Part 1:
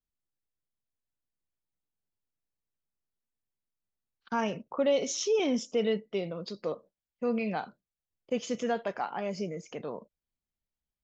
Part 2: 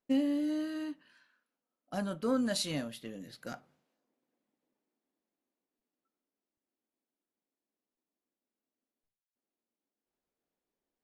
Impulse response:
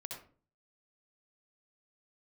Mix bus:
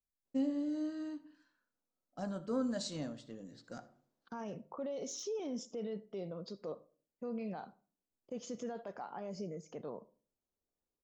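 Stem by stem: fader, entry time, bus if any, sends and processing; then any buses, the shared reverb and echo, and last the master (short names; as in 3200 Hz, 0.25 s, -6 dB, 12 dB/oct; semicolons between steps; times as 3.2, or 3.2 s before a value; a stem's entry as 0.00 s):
-6.5 dB, 0.00 s, send -15 dB, de-esser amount 70%; limiter -26.5 dBFS, peak gain reduction 10 dB
-5.5 dB, 0.25 s, send -9 dB, steep low-pass 8100 Hz 72 dB/oct; de-hum 69.76 Hz, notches 6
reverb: on, RT60 0.40 s, pre-delay 59 ms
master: bell 2500 Hz -10.5 dB 1.3 oct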